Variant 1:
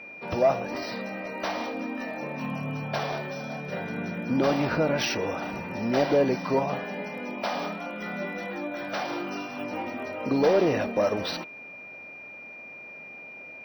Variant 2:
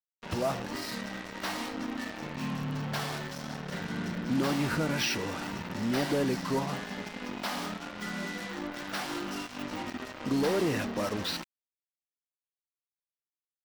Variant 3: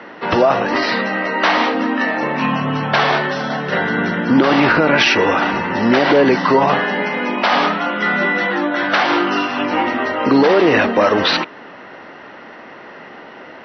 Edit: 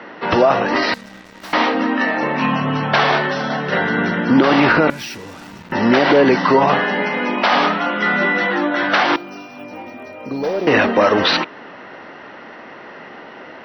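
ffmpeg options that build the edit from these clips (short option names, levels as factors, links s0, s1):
-filter_complex "[1:a]asplit=2[s0][s1];[2:a]asplit=4[s2][s3][s4][s5];[s2]atrim=end=0.942[s6];[s0]atrim=start=0.938:end=1.532[s7];[s3]atrim=start=1.528:end=4.902[s8];[s1]atrim=start=4.898:end=5.722[s9];[s4]atrim=start=5.718:end=9.162[s10];[0:a]atrim=start=9.158:end=10.672[s11];[s5]atrim=start=10.668[s12];[s6][s7]acrossfade=d=0.004:c1=hsin:c2=hsin[s13];[s13][s8]acrossfade=d=0.004:c1=hsin:c2=hsin[s14];[s14][s9]acrossfade=d=0.004:c1=hsin:c2=hsin[s15];[s15][s10]acrossfade=d=0.004:c1=hsin:c2=hsin[s16];[s16][s11]acrossfade=d=0.004:c1=hsin:c2=hsin[s17];[s17][s12]acrossfade=d=0.004:c1=hsin:c2=hsin"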